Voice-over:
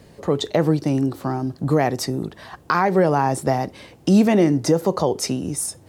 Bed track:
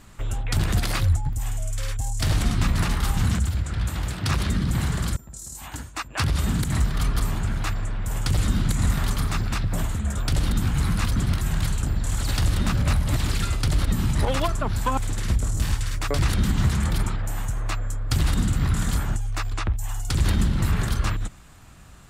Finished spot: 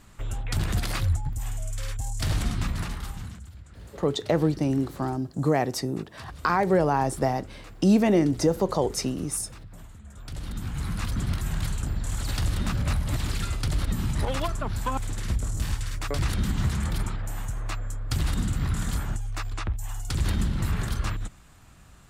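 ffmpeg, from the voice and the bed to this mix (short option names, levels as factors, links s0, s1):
-filter_complex "[0:a]adelay=3750,volume=0.596[s0];[1:a]volume=3.76,afade=t=out:st=2.37:d=1:silence=0.158489,afade=t=in:st=10.1:d=1.2:silence=0.16788[s1];[s0][s1]amix=inputs=2:normalize=0"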